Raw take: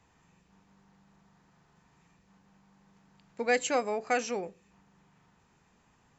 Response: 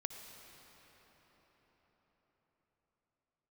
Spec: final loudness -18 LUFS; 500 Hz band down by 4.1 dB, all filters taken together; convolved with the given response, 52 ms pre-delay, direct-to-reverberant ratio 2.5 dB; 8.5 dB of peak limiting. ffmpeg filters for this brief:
-filter_complex "[0:a]equalizer=f=500:t=o:g=-4.5,alimiter=level_in=1.12:limit=0.0631:level=0:latency=1,volume=0.891,asplit=2[s0][s1];[1:a]atrim=start_sample=2205,adelay=52[s2];[s1][s2]afir=irnorm=-1:irlink=0,volume=0.891[s3];[s0][s3]amix=inputs=2:normalize=0,volume=7.94"

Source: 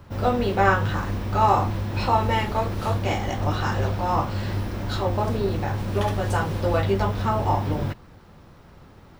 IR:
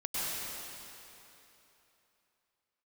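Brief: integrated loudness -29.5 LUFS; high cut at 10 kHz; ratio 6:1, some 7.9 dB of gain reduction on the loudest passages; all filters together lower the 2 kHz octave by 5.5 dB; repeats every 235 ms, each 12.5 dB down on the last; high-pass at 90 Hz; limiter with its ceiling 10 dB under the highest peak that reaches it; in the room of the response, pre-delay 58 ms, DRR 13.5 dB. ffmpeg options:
-filter_complex "[0:a]highpass=90,lowpass=10000,equalizer=f=2000:t=o:g=-8,acompressor=threshold=0.0708:ratio=6,alimiter=limit=0.0631:level=0:latency=1,aecho=1:1:235|470|705:0.237|0.0569|0.0137,asplit=2[s0][s1];[1:a]atrim=start_sample=2205,adelay=58[s2];[s1][s2]afir=irnorm=-1:irlink=0,volume=0.1[s3];[s0][s3]amix=inputs=2:normalize=0,volume=1.41"

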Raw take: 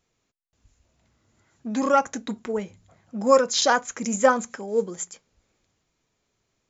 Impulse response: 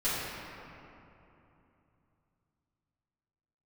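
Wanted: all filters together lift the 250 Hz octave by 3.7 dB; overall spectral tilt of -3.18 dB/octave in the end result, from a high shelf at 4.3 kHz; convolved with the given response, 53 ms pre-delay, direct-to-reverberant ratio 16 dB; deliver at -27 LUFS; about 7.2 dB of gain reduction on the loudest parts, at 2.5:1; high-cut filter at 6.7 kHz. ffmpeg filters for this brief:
-filter_complex "[0:a]lowpass=6700,equalizer=f=250:t=o:g=4,highshelf=f=4300:g=6,acompressor=threshold=0.0794:ratio=2.5,asplit=2[s0][s1];[1:a]atrim=start_sample=2205,adelay=53[s2];[s1][s2]afir=irnorm=-1:irlink=0,volume=0.0501[s3];[s0][s3]amix=inputs=2:normalize=0"

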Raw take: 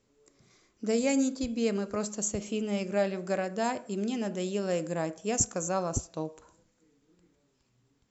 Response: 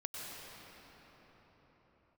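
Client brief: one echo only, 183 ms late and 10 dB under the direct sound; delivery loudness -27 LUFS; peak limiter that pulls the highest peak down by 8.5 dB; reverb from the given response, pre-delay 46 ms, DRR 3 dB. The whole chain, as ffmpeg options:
-filter_complex "[0:a]alimiter=limit=0.0891:level=0:latency=1,aecho=1:1:183:0.316,asplit=2[s0][s1];[1:a]atrim=start_sample=2205,adelay=46[s2];[s1][s2]afir=irnorm=-1:irlink=0,volume=0.668[s3];[s0][s3]amix=inputs=2:normalize=0,volume=1.5"

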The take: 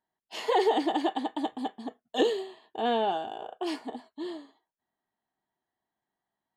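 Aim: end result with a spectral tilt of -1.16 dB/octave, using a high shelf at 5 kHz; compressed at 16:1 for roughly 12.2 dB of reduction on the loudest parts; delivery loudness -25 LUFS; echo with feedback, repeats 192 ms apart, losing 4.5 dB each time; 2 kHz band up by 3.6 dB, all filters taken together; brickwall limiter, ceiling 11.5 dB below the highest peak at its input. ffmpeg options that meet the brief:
-af "equalizer=f=2000:t=o:g=5,highshelf=f=5000:g=-5,acompressor=threshold=0.0282:ratio=16,alimiter=level_in=2.82:limit=0.0631:level=0:latency=1,volume=0.355,aecho=1:1:192|384|576|768|960|1152|1344|1536|1728:0.596|0.357|0.214|0.129|0.0772|0.0463|0.0278|0.0167|0.01,volume=6.31"

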